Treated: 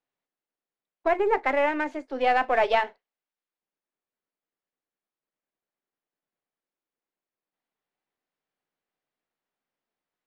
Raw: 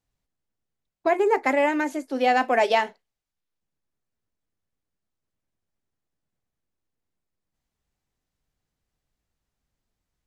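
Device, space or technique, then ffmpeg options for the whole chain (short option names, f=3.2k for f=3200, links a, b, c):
crystal radio: -af "highpass=340,lowpass=3.1k,aeval=exprs='if(lt(val(0),0),0.708*val(0),val(0))':c=same"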